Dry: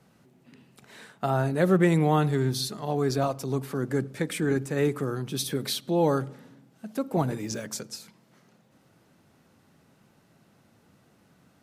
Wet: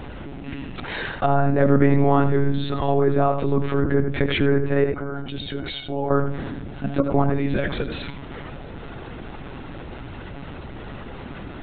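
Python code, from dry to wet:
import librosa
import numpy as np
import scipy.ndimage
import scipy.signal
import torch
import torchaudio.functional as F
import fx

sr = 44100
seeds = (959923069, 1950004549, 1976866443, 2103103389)

y = fx.env_lowpass_down(x, sr, base_hz=1900.0, full_db=-23.5)
y = fx.comb_fb(y, sr, f0_hz=740.0, decay_s=0.16, harmonics='all', damping=0.0, mix_pct=90, at=(4.84, 6.11))
y = y + 10.0 ** (-12.5 / 20.0) * np.pad(y, (int(82 * sr / 1000.0), 0))[:len(y)]
y = fx.lpc_monotone(y, sr, seeds[0], pitch_hz=140.0, order=16)
y = fx.env_flatten(y, sr, amount_pct=50)
y = y * librosa.db_to_amplitude(3.5)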